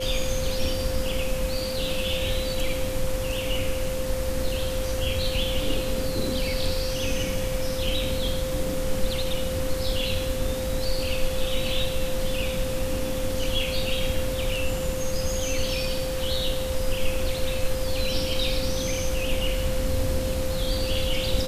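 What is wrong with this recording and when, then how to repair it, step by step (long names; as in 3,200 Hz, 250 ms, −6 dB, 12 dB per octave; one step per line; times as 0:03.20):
whistle 520 Hz −29 dBFS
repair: notch filter 520 Hz, Q 30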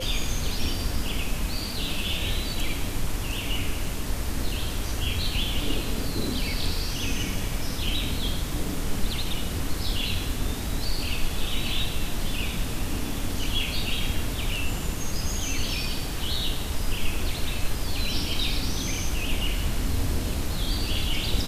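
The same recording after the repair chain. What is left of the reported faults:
none of them is left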